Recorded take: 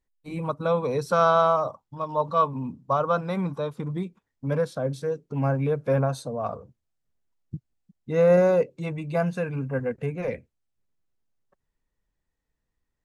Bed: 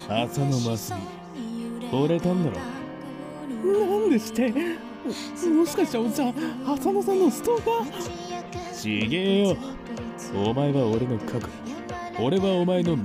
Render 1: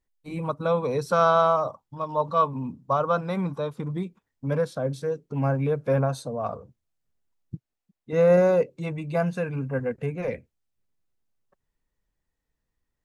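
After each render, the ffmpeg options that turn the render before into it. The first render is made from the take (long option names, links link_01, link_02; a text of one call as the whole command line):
ffmpeg -i in.wav -filter_complex "[0:a]asettb=1/sr,asplit=3[link_01][link_02][link_03];[link_01]atrim=end=7.554[link_04];[link_02]atrim=start=7.55:end=8.13,asetpts=PTS-STARTPTS,afade=type=in:duration=0.004:curve=qsin,afade=type=out:start_time=0.576:duration=0.004:curve=qsin,bass=frequency=250:gain=-11,treble=frequency=4000:gain=-4[link_05];[link_03]atrim=start=8.126[link_06];[link_04][link_05]acrossfade=duration=0.004:curve1=hsin:curve2=qsin[link_07];[link_07][link_06]acrossfade=duration=0.004:curve1=qsin:curve2=hsin" out.wav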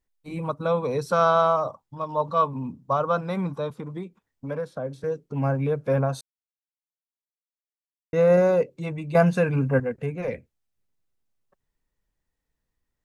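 ffmpeg -i in.wav -filter_complex "[0:a]asettb=1/sr,asplit=3[link_01][link_02][link_03];[link_01]atrim=end=3.704[link_04];[link_02]atrim=start=3.7:end=5.04,asetpts=PTS-STARTPTS,afade=type=in:duration=0.004:curve=qsin,afade=type=out:start_time=1.336:duration=0.004:curve=qsin,acrossover=split=280|2200[link_05][link_06][link_07];[link_05]acompressor=threshold=-38dB:ratio=4[link_08];[link_06]acompressor=threshold=-28dB:ratio=4[link_09];[link_07]acompressor=threshold=-58dB:ratio=4[link_10];[link_08][link_09][link_10]amix=inputs=3:normalize=0[link_11];[link_03]atrim=start=5.036[link_12];[link_04][link_11]acrossfade=duration=0.004:curve1=hsin:curve2=qsin[link_13];[link_13][link_12]acrossfade=duration=0.004:curve1=qsin:curve2=hsin,asplit=5[link_14][link_15][link_16][link_17][link_18];[link_14]atrim=end=6.21,asetpts=PTS-STARTPTS,afade=type=out:start_time=6.206:duration=0.004:curve=hsin[link_19];[link_15]atrim=start=6.21:end=8.13,asetpts=PTS-STARTPTS,volume=0[link_20];[link_16]atrim=start=8.13:end=9.152,asetpts=PTS-STARTPTS,afade=type=in:duration=0.004:curve=hsin[link_21];[link_17]atrim=start=9.148:end=9.802,asetpts=PTS-STARTPTS,volume=6.5dB[link_22];[link_18]atrim=start=9.798[link_23];[link_19][link_20][link_21]concat=n=3:v=0:a=1[link_24];[link_24][link_22]acrossfade=duration=0.004:curve1=hsin:curve2=hsin[link_25];[link_25][link_23]acrossfade=duration=0.004:curve1=hsin:curve2=hsin" out.wav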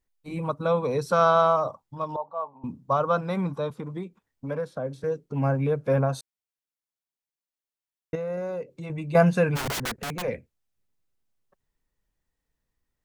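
ffmpeg -i in.wav -filter_complex "[0:a]asettb=1/sr,asplit=3[link_01][link_02][link_03];[link_01]atrim=end=2.164[link_04];[link_02]atrim=start=2.16:end=2.64,asetpts=PTS-STARTPTS,afade=type=in:duration=0.004:curve=qsin,afade=type=out:start_time=0.476:duration=0.004:curve=qsin,bandpass=frequency=770:width_type=q:width=4.8[link_05];[link_03]atrim=start=2.636[link_06];[link_04][link_05]acrossfade=duration=0.004:curve1=hsin:curve2=qsin[link_07];[link_07][link_06]acrossfade=duration=0.004:curve1=qsin:curve2=hsin,asettb=1/sr,asplit=3[link_08][link_09][link_10];[link_08]atrim=end=8.154[link_11];[link_09]atrim=start=8.15:end=8.9,asetpts=PTS-STARTPTS,afade=type=in:duration=0.004:curve=qsin,afade=type=out:start_time=0.746:duration=0.004:curve=qsin,acompressor=threshold=-35dB:ratio=2.5:attack=3.2:release=140:knee=1:detection=peak[link_12];[link_10]atrim=start=8.896[link_13];[link_11][link_12]acrossfade=duration=0.004:curve1=hsin:curve2=qsin[link_14];[link_14][link_13]acrossfade=duration=0.004:curve1=qsin:curve2=hsin,asplit=3[link_15][link_16][link_17];[link_15]afade=type=out:start_time=9.55:duration=0.02[link_18];[link_16]aeval=exprs='(mod(17.8*val(0)+1,2)-1)/17.8':channel_layout=same,afade=type=in:start_time=9.55:duration=0.02,afade=type=out:start_time=10.21:duration=0.02[link_19];[link_17]afade=type=in:start_time=10.21:duration=0.02[link_20];[link_18][link_19][link_20]amix=inputs=3:normalize=0" out.wav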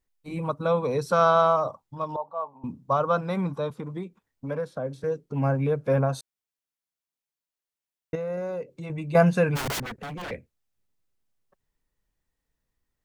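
ffmpeg -i in.wav -filter_complex "[0:a]asettb=1/sr,asplit=3[link_01][link_02][link_03];[link_01]atrim=end=9.824[link_04];[link_02]atrim=start=9.82:end=10.31,asetpts=PTS-STARTPTS,afade=type=in:duration=0.004:curve=qsin,afade=type=out:start_time=0.486:duration=0.004:curve=qsin,aeval=exprs='0.0299*(abs(mod(val(0)/0.0299+3,4)-2)-1)':channel_layout=same[link_05];[link_03]atrim=start=10.306[link_06];[link_04][link_05]acrossfade=duration=0.004:curve1=hsin:curve2=qsin[link_07];[link_07][link_06]acrossfade=duration=0.004:curve1=qsin:curve2=hsin" out.wav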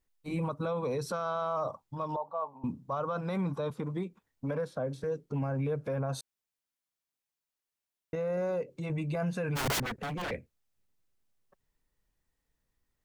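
ffmpeg -i in.wav -af "acompressor=threshold=-25dB:ratio=6,alimiter=level_in=1dB:limit=-24dB:level=0:latency=1:release=19,volume=-1dB" out.wav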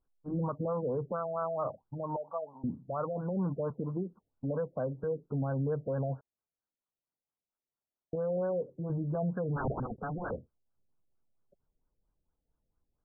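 ffmpeg -i in.wav -af "afftfilt=real='re*lt(b*sr/1024,700*pow(1700/700,0.5+0.5*sin(2*PI*4.4*pts/sr)))':imag='im*lt(b*sr/1024,700*pow(1700/700,0.5+0.5*sin(2*PI*4.4*pts/sr)))':win_size=1024:overlap=0.75" out.wav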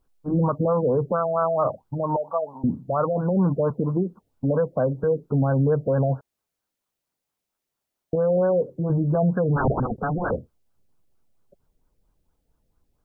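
ffmpeg -i in.wav -af "volume=11.5dB" out.wav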